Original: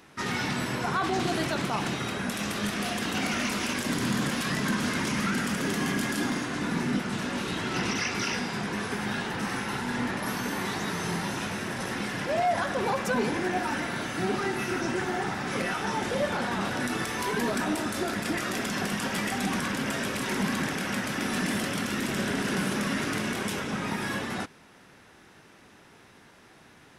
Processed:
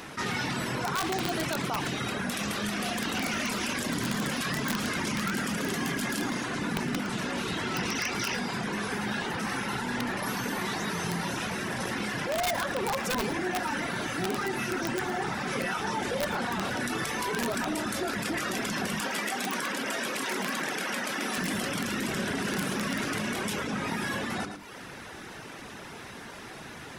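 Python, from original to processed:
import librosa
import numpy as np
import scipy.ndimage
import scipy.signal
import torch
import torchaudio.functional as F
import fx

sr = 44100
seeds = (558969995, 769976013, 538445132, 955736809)

y = fx.rev_schroeder(x, sr, rt60_s=0.79, comb_ms=27, drr_db=16.5)
y = fx.dereverb_blind(y, sr, rt60_s=0.62)
y = fx.hum_notches(y, sr, base_hz=50, count=8)
y = (np.mod(10.0 ** (20.0 / 20.0) * y + 1.0, 2.0) - 1.0) / 10.0 ** (20.0 / 20.0)
y = fx.highpass(y, sr, hz=290.0, slope=12, at=(19.01, 21.38))
y = y + 10.0 ** (-16.0 / 20.0) * np.pad(y, (int(111 * sr / 1000.0), 0))[:len(y)]
y = fx.env_flatten(y, sr, amount_pct=50)
y = F.gain(torch.from_numpy(y), -3.5).numpy()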